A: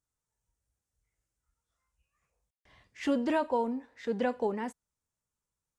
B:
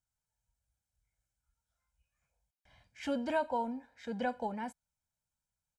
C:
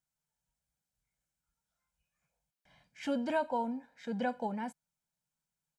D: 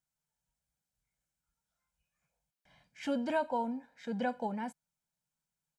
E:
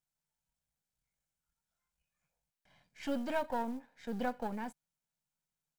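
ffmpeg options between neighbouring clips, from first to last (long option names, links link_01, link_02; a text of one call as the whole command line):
ffmpeg -i in.wav -af "aecho=1:1:1.3:0.73,volume=-5dB" out.wav
ffmpeg -i in.wav -af "lowshelf=frequency=120:width_type=q:width=3:gain=-7" out.wav
ffmpeg -i in.wav -af anull out.wav
ffmpeg -i in.wav -af "aeval=exprs='if(lt(val(0),0),0.447*val(0),val(0))':channel_layout=same,acrusher=bits=7:mode=log:mix=0:aa=0.000001" out.wav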